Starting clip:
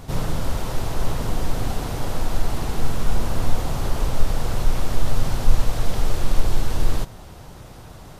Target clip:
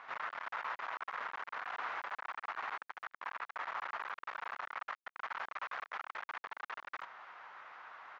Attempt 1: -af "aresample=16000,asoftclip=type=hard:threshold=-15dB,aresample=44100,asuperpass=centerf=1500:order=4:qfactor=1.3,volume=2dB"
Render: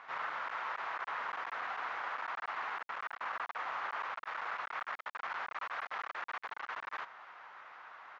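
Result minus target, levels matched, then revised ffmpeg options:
hard clip: distortion -4 dB
-af "aresample=16000,asoftclip=type=hard:threshold=-22dB,aresample=44100,asuperpass=centerf=1500:order=4:qfactor=1.3,volume=2dB"

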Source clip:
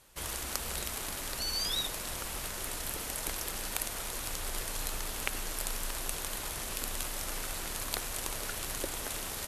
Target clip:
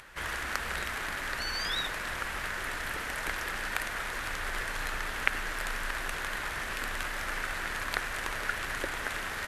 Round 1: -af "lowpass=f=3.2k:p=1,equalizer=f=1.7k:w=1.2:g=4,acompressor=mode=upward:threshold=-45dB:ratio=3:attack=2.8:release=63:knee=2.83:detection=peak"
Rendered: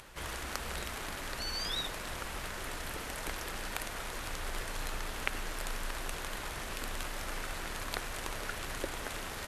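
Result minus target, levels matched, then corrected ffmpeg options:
2000 Hz band -4.0 dB
-af "lowpass=f=3.2k:p=1,equalizer=f=1.7k:w=1.2:g=14.5,acompressor=mode=upward:threshold=-45dB:ratio=3:attack=2.8:release=63:knee=2.83:detection=peak"

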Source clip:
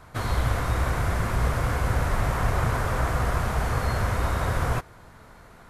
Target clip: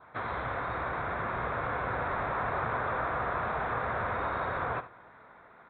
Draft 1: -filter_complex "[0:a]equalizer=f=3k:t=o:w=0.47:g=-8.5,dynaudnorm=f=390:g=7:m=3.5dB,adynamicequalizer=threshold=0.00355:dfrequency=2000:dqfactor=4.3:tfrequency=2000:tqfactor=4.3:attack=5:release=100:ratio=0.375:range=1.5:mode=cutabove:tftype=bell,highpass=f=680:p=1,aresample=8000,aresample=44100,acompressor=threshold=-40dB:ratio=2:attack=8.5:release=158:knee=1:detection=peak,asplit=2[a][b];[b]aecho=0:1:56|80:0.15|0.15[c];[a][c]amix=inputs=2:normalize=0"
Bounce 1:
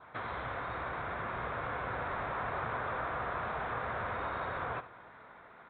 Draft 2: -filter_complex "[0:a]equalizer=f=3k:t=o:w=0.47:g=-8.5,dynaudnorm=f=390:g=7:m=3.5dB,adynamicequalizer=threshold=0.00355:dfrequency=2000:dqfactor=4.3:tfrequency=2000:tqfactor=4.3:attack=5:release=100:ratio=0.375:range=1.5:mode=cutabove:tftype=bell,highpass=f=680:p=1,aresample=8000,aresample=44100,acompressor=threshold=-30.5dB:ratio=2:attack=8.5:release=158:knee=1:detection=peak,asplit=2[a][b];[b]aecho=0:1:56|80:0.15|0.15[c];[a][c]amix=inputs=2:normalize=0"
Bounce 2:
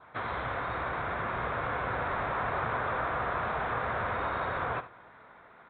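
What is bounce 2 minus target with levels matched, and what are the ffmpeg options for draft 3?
4000 Hz band +3.5 dB
-filter_complex "[0:a]equalizer=f=3k:t=o:w=0.47:g=-15,dynaudnorm=f=390:g=7:m=3.5dB,adynamicequalizer=threshold=0.00355:dfrequency=2000:dqfactor=4.3:tfrequency=2000:tqfactor=4.3:attack=5:release=100:ratio=0.375:range=1.5:mode=cutabove:tftype=bell,highpass=f=680:p=1,aresample=8000,aresample=44100,acompressor=threshold=-30.5dB:ratio=2:attack=8.5:release=158:knee=1:detection=peak,asplit=2[a][b];[b]aecho=0:1:56|80:0.15|0.15[c];[a][c]amix=inputs=2:normalize=0"

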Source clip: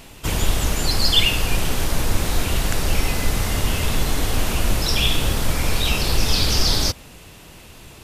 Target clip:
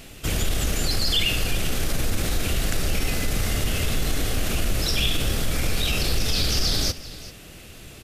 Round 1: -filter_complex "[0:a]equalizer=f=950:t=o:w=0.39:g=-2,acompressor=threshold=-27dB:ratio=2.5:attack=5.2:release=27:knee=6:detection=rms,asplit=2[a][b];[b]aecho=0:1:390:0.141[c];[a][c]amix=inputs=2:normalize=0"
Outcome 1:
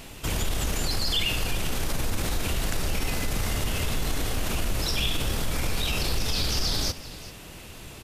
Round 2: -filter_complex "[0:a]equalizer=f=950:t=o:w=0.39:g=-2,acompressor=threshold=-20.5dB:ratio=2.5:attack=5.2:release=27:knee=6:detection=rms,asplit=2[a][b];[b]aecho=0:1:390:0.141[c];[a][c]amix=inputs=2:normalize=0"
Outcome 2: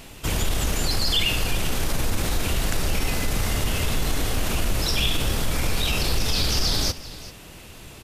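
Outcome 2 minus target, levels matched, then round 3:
1000 Hz band +3.5 dB
-filter_complex "[0:a]equalizer=f=950:t=o:w=0.39:g=-11,acompressor=threshold=-20.5dB:ratio=2.5:attack=5.2:release=27:knee=6:detection=rms,asplit=2[a][b];[b]aecho=0:1:390:0.141[c];[a][c]amix=inputs=2:normalize=0"

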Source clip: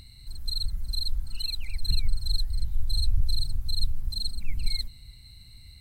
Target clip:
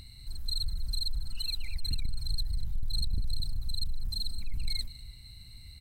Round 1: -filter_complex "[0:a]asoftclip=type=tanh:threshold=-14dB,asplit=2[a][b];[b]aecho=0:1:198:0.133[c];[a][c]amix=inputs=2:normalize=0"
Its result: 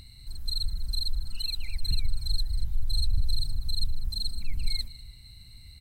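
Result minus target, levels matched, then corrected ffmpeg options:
soft clip: distortion -11 dB
-filter_complex "[0:a]asoftclip=type=tanh:threshold=-24dB,asplit=2[a][b];[b]aecho=0:1:198:0.133[c];[a][c]amix=inputs=2:normalize=0"

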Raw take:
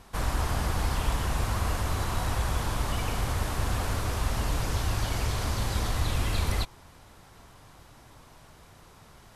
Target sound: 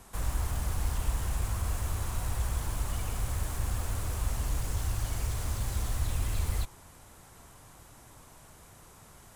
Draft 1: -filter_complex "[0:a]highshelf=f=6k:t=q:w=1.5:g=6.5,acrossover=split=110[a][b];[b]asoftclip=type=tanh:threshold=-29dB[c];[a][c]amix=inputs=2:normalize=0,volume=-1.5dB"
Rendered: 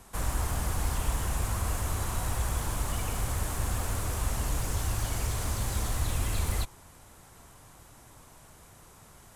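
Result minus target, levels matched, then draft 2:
soft clip: distortion -7 dB
-filter_complex "[0:a]highshelf=f=6k:t=q:w=1.5:g=6.5,acrossover=split=110[a][b];[b]asoftclip=type=tanh:threshold=-37.5dB[c];[a][c]amix=inputs=2:normalize=0,volume=-1.5dB"

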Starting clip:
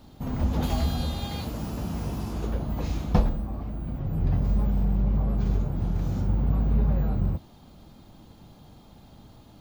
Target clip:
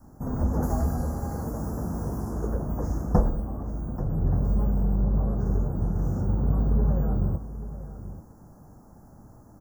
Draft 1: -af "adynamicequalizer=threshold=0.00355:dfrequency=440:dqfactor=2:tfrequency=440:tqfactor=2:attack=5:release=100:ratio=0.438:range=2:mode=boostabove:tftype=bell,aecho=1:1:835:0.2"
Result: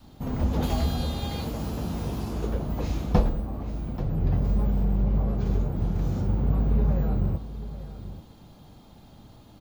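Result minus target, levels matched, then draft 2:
4000 Hz band +20.0 dB
-af "adynamicequalizer=threshold=0.00355:dfrequency=440:dqfactor=2:tfrequency=440:tqfactor=2:attack=5:release=100:ratio=0.438:range=2:mode=boostabove:tftype=bell,asuperstop=centerf=3100:order=8:qfactor=0.74,aecho=1:1:835:0.2"

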